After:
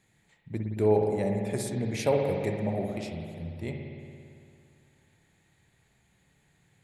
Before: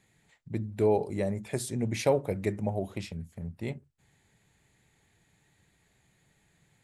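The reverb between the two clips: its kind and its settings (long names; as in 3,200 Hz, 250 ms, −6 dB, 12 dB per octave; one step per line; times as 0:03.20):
spring reverb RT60 2.4 s, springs 56 ms, chirp 35 ms, DRR 2 dB
level −1 dB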